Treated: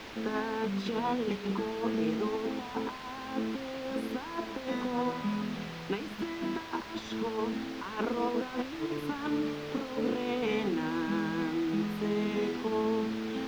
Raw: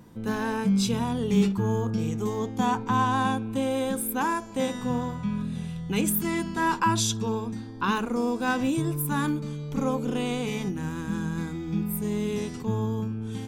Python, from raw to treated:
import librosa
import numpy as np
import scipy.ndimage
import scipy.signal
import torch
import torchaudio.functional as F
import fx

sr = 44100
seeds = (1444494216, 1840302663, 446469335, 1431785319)

y = scipy.signal.sosfilt(scipy.signal.butter(4, 270.0, 'highpass', fs=sr, output='sos'), x)
y = fx.low_shelf(y, sr, hz=400.0, db=4.5)
y = fx.hum_notches(y, sr, base_hz=60, count=8)
y = fx.over_compress(y, sr, threshold_db=-31.0, ratio=-0.5)
y = fx.quant_dither(y, sr, seeds[0], bits=6, dither='triangular')
y = fx.air_absorb(y, sr, metres=260.0)